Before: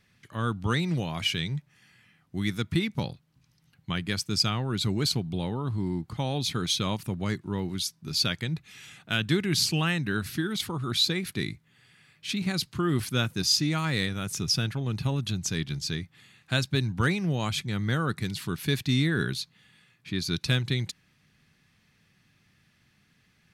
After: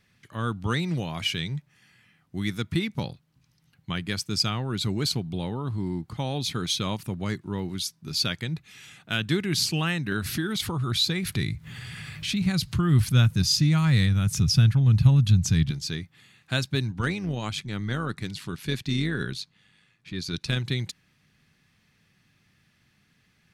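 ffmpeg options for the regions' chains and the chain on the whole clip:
-filter_complex "[0:a]asettb=1/sr,asplit=3[a][b][c];[a]atrim=end=10.124[d];[b]atrim=start=10.12:end=15.71,asetpts=PTS-STARTPTS,afade=t=in:d=0.004:c=qsin,afade=t=out:st=5.586:d=0.004:c=qsin,asubboost=boost=9.5:cutoff=130,acompressor=mode=upward:threshold=-22dB:ratio=2.5:attack=3.2:release=140:knee=2.83:detection=peak[e];[c]atrim=start=15.706[f];[d][e]acrossfade=d=0.004:c1=hsin:c2=qsin[g];[g][f]acrossfade=d=0.004:c1=qsin:c2=hsin,asettb=1/sr,asplit=3[h][i][j];[h]atrim=end=16.914[k];[i]atrim=start=16.91:end=20.57,asetpts=PTS-STARTPTS,afade=t=in:d=0.004:c=qsin,afade=t=out:st=3.656:d=0.004:c=qsin,tremolo=f=100:d=0.462,lowpass=10k[l];[j]atrim=start=20.566[m];[k][l]acrossfade=d=0.004:c1=hsin:c2=qsin[n];[n][m]acrossfade=d=0.004:c1=qsin:c2=hsin"

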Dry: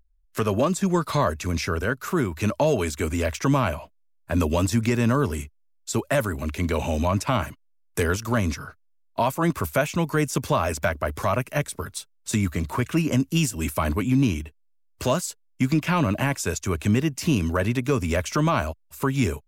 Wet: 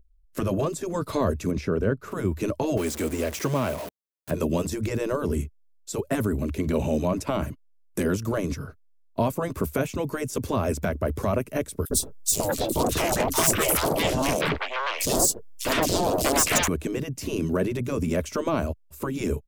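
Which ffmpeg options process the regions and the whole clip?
-filter_complex "[0:a]asettb=1/sr,asplit=3[a][b][c];[a]atrim=end=1.514[d];[b]atrim=start=1.51:end=2.12,asetpts=PTS-STARTPTS,afade=t=in:d=0.004:c=qsin,afade=t=out:st=0.606:d=0.004:c=qsin,lowpass=f=2.5k:p=1,agate=range=-33dB:threshold=-42dB:ratio=3:release=100:detection=peak[e];[c]atrim=start=2.116[f];[d][e]acrossfade=d=0.004:c1=hsin:c2=qsin[g];[g][f]acrossfade=d=0.004:c1=qsin:c2=hsin,asettb=1/sr,asplit=3[h][i][j];[h]atrim=end=2.774[k];[i]atrim=start=2.77:end=4.31,asetpts=PTS-STARTPTS,afade=t=in:d=0.004:c=qsin,afade=t=out:st=1.536:d=0.004:c=qsin,aeval=exprs='val(0)+0.5*0.0501*sgn(val(0))':c=same,highpass=f=500:p=1[l];[j]atrim=start=4.306[m];[k][l]acrossfade=d=0.004:c1=hsin:c2=qsin[n];[n][m]acrossfade=d=0.004:c1=qsin:c2=hsin,asettb=1/sr,asplit=3[o][p][q];[o]atrim=end=11.854[r];[p]atrim=start=11.85:end=16.68,asetpts=PTS-STARTPTS,afade=t=in:d=0.004:c=qsin,afade=t=out:st=4.826:d=0.004:c=qsin,aeval=exprs='0.282*sin(PI/2*5.01*val(0)/0.282)':c=same,acrossover=split=950|3900[s][t][u];[s]adelay=60[v];[t]adelay=640[w];[v][w][u]amix=inputs=3:normalize=0,atrim=end_sample=213003[x];[q]atrim=start=16.676[y];[r][x]acrossfade=d=0.004:c1=hsin:c2=qsin[z];[z][y]acrossfade=d=0.004:c1=qsin:c2=hsin,firequalizer=gain_entry='entry(450,0);entry(810,-11);entry(1600,-13)':delay=0.05:min_phase=1,afftfilt=real='re*lt(hypot(re,im),0.398)':imag='im*lt(hypot(re,im),0.398)':win_size=1024:overlap=0.75,highshelf=f=6.8k:g=6,volume=5dB"

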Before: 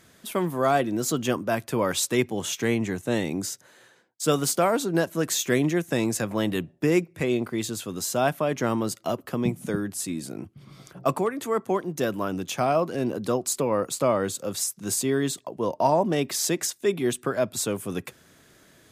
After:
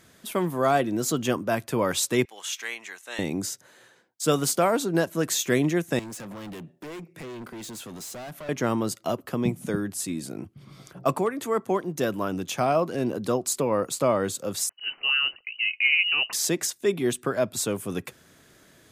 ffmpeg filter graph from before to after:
-filter_complex "[0:a]asettb=1/sr,asplit=3[a][b][c];[a]atrim=end=2.254[d];[b]atrim=start=2.25:end=3.19,asetpts=PTS-STARTPTS,afade=t=in:d=0.004:c=qsin,afade=t=out:st=0.936:d=0.004:c=qsin,highpass=1.3k,highshelf=f=8.7k:g=-6[e];[c]atrim=start=3.186[f];[d][e]acrossfade=d=0.004:c1=hsin:c2=qsin[g];[g][f]acrossfade=d=0.004:c1=qsin:c2=hsin,asettb=1/sr,asplit=3[h][i][j];[h]atrim=end=5.994[k];[i]atrim=start=5.99:end=8.49,asetpts=PTS-STARTPTS,afade=t=in:d=0.004:c=qsin,afade=t=out:st=2.496:d=0.004:c=qsin,highpass=f=130:w=0.5412,highpass=f=130:w=1.3066,acompressor=threshold=-33dB:ratio=2:attack=3.2:release=140:knee=1:detection=peak,asoftclip=type=hard:threshold=-36dB[l];[j]atrim=start=8.486[m];[k][l]acrossfade=d=0.004:c1=hsin:c2=qsin[n];[n][m]acrossfade=d=0.004:c1=qsin:c2=hsin,asettb=1/sr,asplit=3[o][p][q];[o]atrim=end=14.694[r];[p]atrim=start=14.69:end=16.33,asetpts=PTS-STARTPTS,afade=t=in:d=0.004:c=qsin,afade=t=out:st=1.636:d=0.004:c=qsin,equalizer=f=660:w=7:g=-3.5,lowpass=f=2.6k:t=q:w=0.5098,lowpass=f=2.6k:t=q:w=0.6013,lowpass=f=2.6k:t=q:w=0.9,lowpass=f=2.6k:t=q:w=2.563,afreqshift=-3100[s];[q]atrim=start=16.326[t];[r][s]acrossfade=d=0.004:c1=hsin:c2=qsin[u];[u][t]acrossfade=d=0.004:c1=qsin:c2=hsin"

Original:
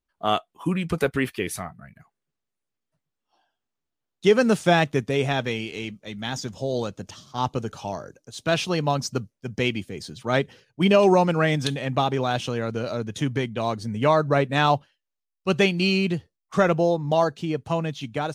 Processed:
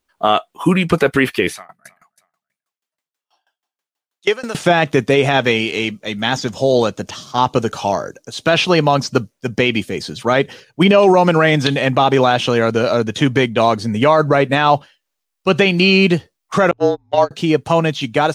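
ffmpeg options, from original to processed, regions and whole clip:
-filter_complex "[0:a]asettb=1/sr,asplit=3[a][b][c];[a]atrim=end=1.534[d];[b]atrim=start=1.53:end=4.55,asetpts=PTS-STARTPTS,afade=t=in:d=0.004:c=qsin,afade=t=out:st=3.016:d=0.004:c=qsin,highpass=f=880:p=1,aecho=1:1:315|630:0.0794|0.0262,atrim=end_sample=133182,aeval=exprs='val(0)*pow(10,-26*if(lt(mod(6.2*n/s,1),2*abs(6.2)/1000),1-mod(6.2*n/s,1)/(2*abs(6.2)/1000),(mod(6.2*n/s,1)-2*abs(6.2)/1000)/(1-2*abs(6.2)/1000))/20)':c=same[e];[c]atrim=start=4.546[f];[d][e]acrossfade=d=0.004:c1=hsin:c2=qsin[g];[g][f]acrossfade=d=0.004:c1=qsin:c2=hsin,asettb=1/sr,asplit=3[h][i][j];[h]atrim=end=16.714[k];[i]atrim=start=16.71:end=17.31,asetpts=PTS-STARTPTS,afade=t=in:d=0.004:c=qsin,afade=t=out:st=0.596:d=0.004:c=qsin,lowpass=6.5k,agate=range=-36dB:threshold=-19dB:ratio=16:release=100:detection=peak,afreqshift=-39[l];[j]atrim=start=17.306[m];[k][l]acrossfade=d=0.004:c1=hsin:c2=qsin[n];[n][m]acrossfade=d=0.004:c1=qsin:c2=hsin,acrossover=split=4200[o][p];[p]acompressor=threshold=-47dB:ratio=4:attack=1:release=60[q];[o][q]amix=inputs=2:normalize=0,lowshelf=f=170:g=-10.5,alimiter=level_in=15.5dB:limit=-1dB:release=50:level=0:latency=1,volume=-1dB"

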